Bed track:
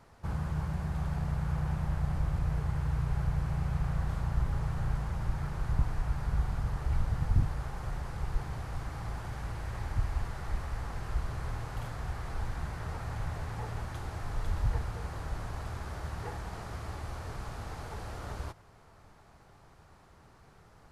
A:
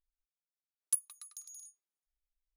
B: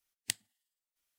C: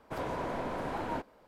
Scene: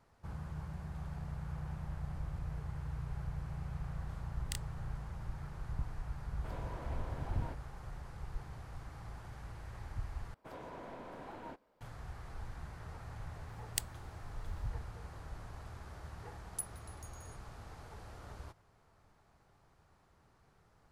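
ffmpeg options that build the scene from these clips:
-filter_complex "[2:a]asplit=2[a][b];[3:a]asplit=2[c][d];[0:a]volume=-10dB[e];[a]asplit=2[f][g];[g]adelay=31,volume=-2.5dB[h];[f][h]amix=inputs=2:normalize=0[i];[b]highshelf=f=9.8k:g=11[j];[e]asplit=2[k][l];[k]atrim=end=10.344[m];[d]atrim=end=1.47,asetpts=PTS-STARTPTS,volume=-12.5dB[n];[l]atrim=start=11.806[o];[i]atrim=end=1.18,asetpts=PTS-STARTPTS,volume=-10dB,afade=t=in:d=0.004:c=hsin,afade=t=out:st=1.176:d=0.004:c=hsin,adelay=4220[p];[c]atrim=end=1.47,asetpts=PTS-STARTPTS,volume=-12.5dB,afade=t=in:d=0.004:c=hsin,afade=t=out:st=1.466:d=0.004:c=hsin,adelay=6330[q];[j]atrim=end=1.18,asetpts=PTS-STARTPTS,volume=-5.5dB,afade=t=in:d=0.004:c=hsin,afade=t=out:st=1.176:d=0.004:c=hsin,adelay=594468S[r];[1:a]atrim=end=2.56,asetpts=PTS-STARTPTS,volume=-9dB,afade=t=in:d=0.004:c=hsin,afade=t=out:st=2.556:d=0.004:c=hsin,adelay=15660[s];[m][n]acrossfade=d=0.004:c1=hsin:c2=hsin[t];[t][o]acrossfade=d=0.004:c1=hsin:c2=hsin[u];[u][p][q][r][s]amix=inputs=5:normalize=0"

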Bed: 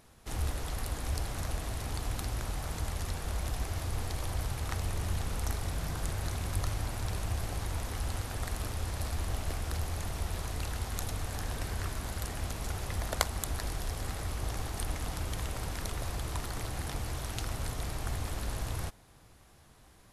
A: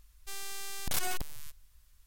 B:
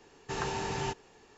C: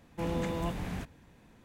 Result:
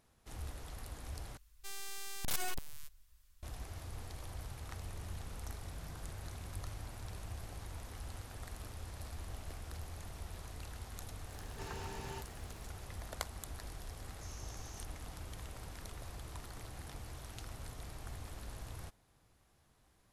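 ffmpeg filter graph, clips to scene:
-filter_complex "[2:a]asplit=2[a][b];[0:a]volume=-11.5dB[c];[a]aeval=exprs='val(0)+0.5*0.00562*sgn(val(0))':c=same[d];[b]bandpass=f=6.1k:t=q:w=6.2:csg=0[e];[c]asplit=2[f][g];[f]atrim=end=1.374[h];[1:a]atrim=end=2.06,asetpts=PTS-STARTPTS,volume=-4.5dB[i];[g]atrim=start=3.426[j];[d]atrim=end=1.37,asetpts=PTS-STARTPTS,volume=-13.5dB,afade=t=in:d=0.004:c=hsin,afade=t=out:st=1.366:d=0.004:c=hsin,adelay=11290[k];[e]atrim=end=1.37,asetpts=PTS-STARTPTS,volume=-4.5dB,afade=t=in:d=0.004:c=hsin,afade=t=out:st=1.366:d=0.004:c=hsin,adelay=13920[l];[h][i]acrossfade=d=0.004:c1=hsin:c2=hsin[m];[m][j]acrossfade=d=0.004:c1=hsin:c2=hsin[n];[n][k][l]amix=inputs=3:normalize=0"

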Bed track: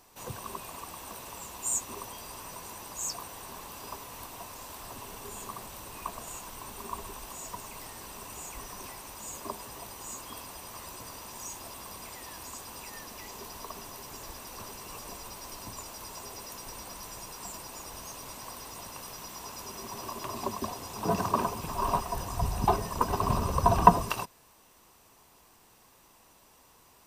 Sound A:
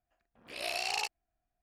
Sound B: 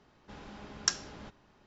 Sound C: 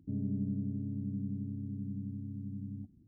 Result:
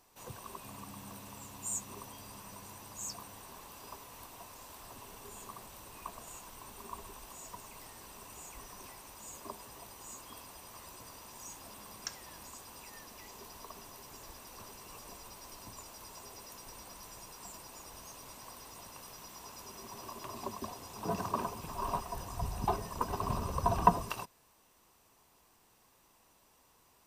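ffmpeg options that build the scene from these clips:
-filter_complex "[0:a]volume=-7dB[a];[3:a]atrim=end=3.07,asetpts=PTS-STARTPTS,volume=-17.5dB,afade=t=in:d=0.004:c=hsin,afade=t=out:st=3.066:d=0.004:c=hsin,adelay=560[b];[2:a]atrim=end=1.66,asetpts=PTS-STARTPTS,volume=-13dB,afade=t=in:d=0.004:c=hsin,afade=t=out:st=1.656:d=0.004:c=hsin,adelay=11190[c];[a][b][c]amix=inputs=3:normalize=0"

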